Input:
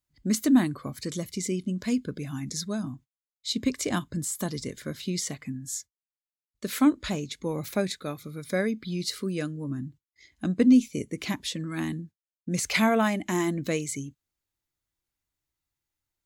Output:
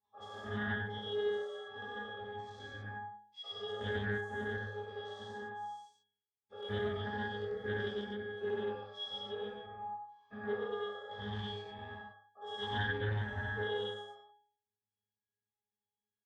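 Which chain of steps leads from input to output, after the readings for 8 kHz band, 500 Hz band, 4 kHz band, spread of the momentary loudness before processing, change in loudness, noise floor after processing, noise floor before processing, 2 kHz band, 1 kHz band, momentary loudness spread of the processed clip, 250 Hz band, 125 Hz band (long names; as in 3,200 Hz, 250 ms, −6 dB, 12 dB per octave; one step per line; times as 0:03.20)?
below −35 dB, −5.5 dB, −7.5 dB, 14 LU, −11.5 dB, below −85 dBFS, below −85 dBFS, −4.0 dB, −6.0 dB, 11 LU, −21.0 dB, −8.5 dB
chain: every bin's largest magnitude spread in time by 240 ms
high-pass filter 270 Hz 12 dB per octave
high-shelf EQ 4,200 Hz −6.5 dB
brickwall limiter −13 dBFS, peak gain reduction 8.5 dB
ring modulation 960 Hz
resonances in every octave G#, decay 0.55 s
single-tap delay 94 ms −3 dB
highs frequency-modulated by the lows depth 0.2 ms
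level +11.5 dB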